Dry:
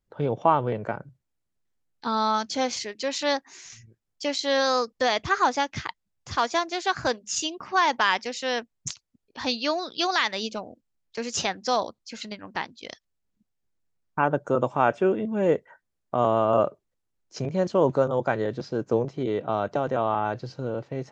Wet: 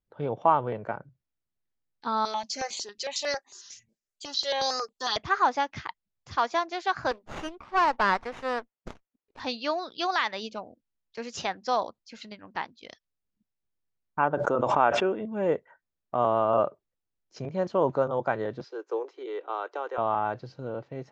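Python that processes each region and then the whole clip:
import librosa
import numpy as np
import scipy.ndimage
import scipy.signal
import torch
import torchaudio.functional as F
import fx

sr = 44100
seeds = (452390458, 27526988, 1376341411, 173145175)

y = fx.chain(x, sr, fx.bass_treble(bass_db=-11, treble_db=14),
    fx.comb(ms=5.0, depth=0.49),
    fx.phaser_held(hz=11.0, low_hz=250.0, high_hz=5400.0), at=(2.25, 5.17))
y = fx.chain(y, sr, fx.highpass(hz=320.0, slope=12),
    fx.running_max(window=9), at=(7.11, 9.4))
y = fx.chain(y, sr, fx.peak_eq(hz=130.0, db=-5.5, octaves=1.0),
    fx.pre_swell(db_per_s=25.0), at=(14.34, 15.21))
y = fx.chain(y, sr, fx.steep_highpass(hz=350.0, slope=48),
    fx.peak_eq(hz=640.0, db=-11.0, octaves=0.4), at=(18.64, 19.98))
y = scipy.signal.sosfilt(scipy.signal.butter(2, 5400.0, 'lowpass', fs=sr, output='sos'), y)
y = fx.dynamic_eq(y, sr, hz=970.0, q=0.71, threshold_db=-36.0, ratio=4.0, max_db=6)
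y = F.gain(torch.from_numpy(y), -6.5).numpy()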